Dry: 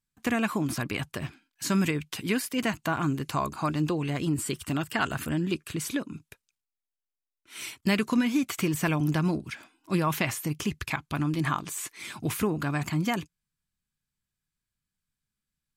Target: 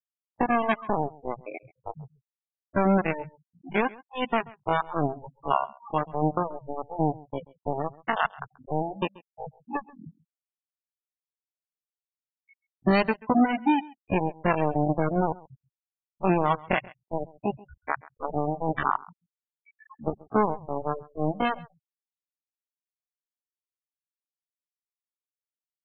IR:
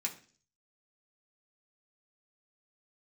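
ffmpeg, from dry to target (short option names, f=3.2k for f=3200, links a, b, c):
-filter_complex "[0:a]aeval=exprs='0.224*(cos(1*acos(clip(val(0)/0.224,-1,1)))-cos(1*PI/2))+0.00708*(cos(2*acos(clip(val(0)/0.224,-1,1)))-cos(2*PI/2))+0.00447*(cos(5*acos(clip(val(0)/0.224,-1,1)))-cos(5*PI/2))+0.0562*(cos(7*acos(clip(val(0)/0.224,-1,1)))-cos(7*PI/2))':c=same,lowpass=11k,equalizer=f=820:w=0.99:g=4.5,bandreject=f=4.9k:w=17,asplit=2[a][b];[b]acompressor=threshold=-37dB:ratio=16,volume=-1dB[c];[a][c]amix=inputs=2:normalize=0,afftfilt=real='re*gte(hypot(re,im),0.0891)':imag='im*gte(hypot(re,im),0.0891)':win_size=1024:overlap=0.75,atempo=0.61,aecho=1:1:134:0.0794"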